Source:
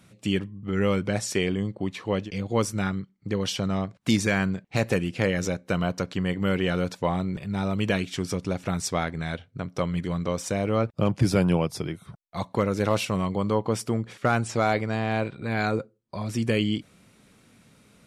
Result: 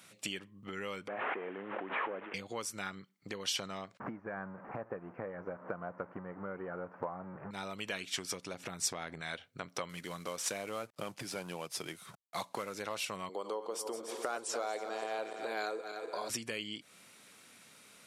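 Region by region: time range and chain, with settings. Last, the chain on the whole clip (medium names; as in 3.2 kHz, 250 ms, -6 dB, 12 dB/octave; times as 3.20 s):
1.08–2.34 s: one-bit delta coder 16 kbps, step -37.5 dBFS + three-band isolator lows -22 dB, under 230 Hz, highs -19 dB, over 2 kHz + swell ahead of each attack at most 27 dB/s
4.00–7.51 s: jump at every zero crossing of -28 dBFS + inverse Chebyshev low-pass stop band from 3.5 kHz, stop band 50 dB + transient shaper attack +7 dB, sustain -5 dB
8.54–9.21 s: bass shelf 500 Hz +8.5 dB + compression, threshold -23 dBFS
9.89–12.75 s: CVSD coder 64 kbps + high-pass 87 Hz
13.29–16.30 s: backward echo that repeats 146 ms, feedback 65%, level -10.5 dB + resonant high-pass 400 Hz, resonance Q 1.8 + peaking EQ 2.1 kHz -8 dB 1 oct
whole clip: compression 6:1, threshold -32 dBFS; high-pass 1.1 kHz 6 dB/octave; treble shelf 9.4 kHz +3.5 dB; trim +3.5 dB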